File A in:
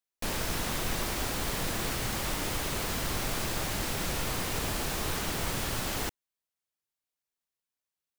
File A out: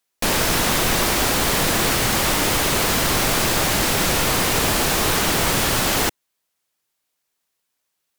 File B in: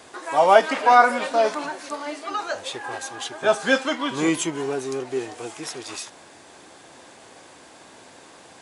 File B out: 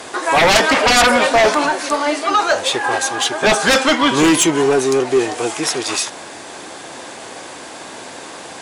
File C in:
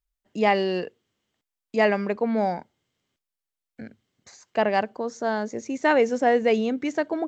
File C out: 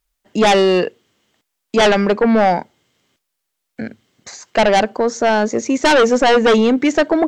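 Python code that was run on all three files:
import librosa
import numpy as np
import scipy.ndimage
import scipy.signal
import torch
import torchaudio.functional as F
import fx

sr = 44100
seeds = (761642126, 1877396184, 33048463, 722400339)

p1 = fx.low_shelf(x, sr, hz=120.0, db=-7.5)
p2 = fx.fold_sine(p1, sr, drive_db=18, ceiling_db=-1.0)
p3 = p1 + F.gain(torch.from_numpy(p2), -4.5).numpy()
y = F.gain(torch.from_numpy(p3), -4.0).numpy()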